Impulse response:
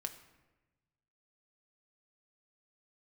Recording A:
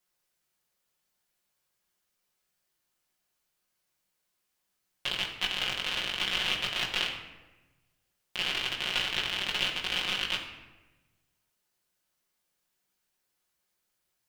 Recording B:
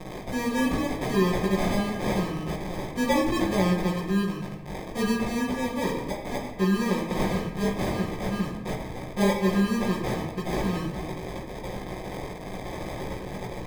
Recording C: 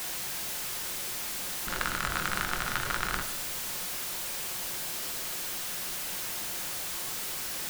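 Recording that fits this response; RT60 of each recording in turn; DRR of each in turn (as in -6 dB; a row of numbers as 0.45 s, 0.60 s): C; 1.1 s, 1.1 s, 1.1 s; -3.5 dB, -11.0 dB, 5.5 dB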